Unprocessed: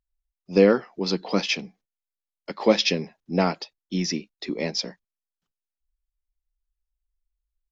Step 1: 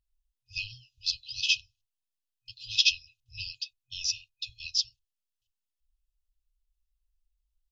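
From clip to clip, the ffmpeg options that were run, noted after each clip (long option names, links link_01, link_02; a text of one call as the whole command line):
ffmpeg -i in.wav -af "afftfilt=real='re*(1-between(b*sr/4096,120,2500))':imag='im*(1-between(b*sr/4096,120,2500))':win_size=4096:overlap=0.75,highshelf=frequency=5700:gain=-5,volume=3dB" out.wav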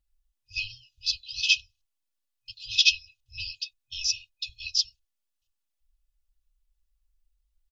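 ffmpeg -i in.wav -af "aecho=1:1:3.5:0.94" out.wav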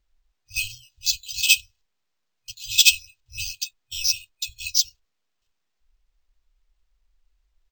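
ffmpeg -i in.wav -af "acrusher=samples=4:mix=1:aa=0.000001,volume=5dB" out.wav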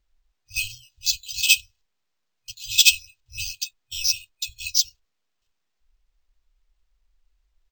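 ffmpeg -i in.wav -af anull out.wav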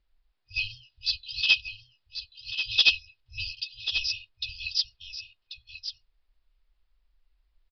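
ffmpeg -i in.wav -filter_complex "[0:a]asplit=2[link_01][link_02];[link_02]asoftclip=type=tanh:threshold=-15dB,volume=-6dB[link_03];[link_01][link_03]amix=inputs=2:normalize=0,aecho=1:1:1087:0.335,aresample=11025,aresample=44100,volume=-5dB" out.wav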